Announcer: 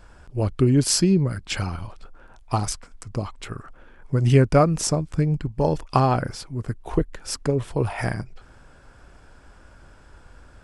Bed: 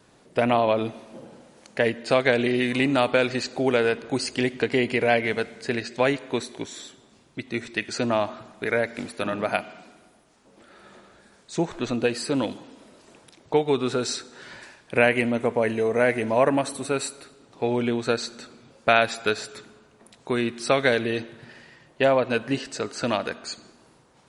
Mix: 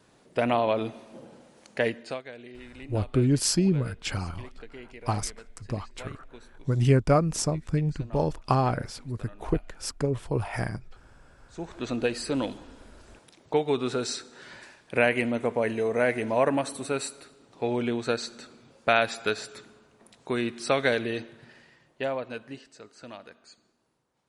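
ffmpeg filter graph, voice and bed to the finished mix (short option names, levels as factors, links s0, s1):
-filter_complex "[0:a]adelay=2550,volume=0.596[s0];[1:a]volume=5.96,afade=t=out:st=1.85:d=0.37:silence=0.112202,afade=t=in:st=11.49:d=0.43:silence=0.112202,afade=t=out:st=20.89:d=1.81:silence=0.177828[s1];[s0][s1]amix=inputs=2:normalize=0"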